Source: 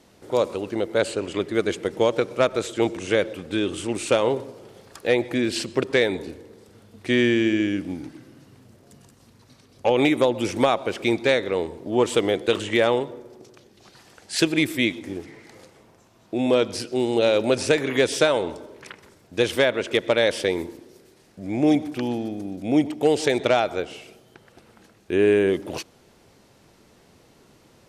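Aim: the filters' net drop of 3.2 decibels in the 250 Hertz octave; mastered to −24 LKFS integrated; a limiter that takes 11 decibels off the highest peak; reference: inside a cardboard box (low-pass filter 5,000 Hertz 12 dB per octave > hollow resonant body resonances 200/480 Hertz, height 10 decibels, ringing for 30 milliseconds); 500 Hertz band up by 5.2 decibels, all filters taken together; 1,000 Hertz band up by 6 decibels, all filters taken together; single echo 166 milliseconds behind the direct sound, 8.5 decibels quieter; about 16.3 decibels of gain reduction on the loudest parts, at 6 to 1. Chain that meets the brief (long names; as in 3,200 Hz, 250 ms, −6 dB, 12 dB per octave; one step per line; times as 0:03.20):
parametric band 250 Hz −9 dB
parametric band 500 Hz +7 dB
parametric band 1,000 Hz +6 dB
downward compressor 6 to 1, threshold −28 dBFS
brickwall limiter −25 dBFS
low-pass filter 5,000 Hz 12 dB per octave
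single-tap delay 166 ms −8.5 dB
hollow resonant body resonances 200/480 Hz, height 10 dB, ringing for 30 ms
level +6 dB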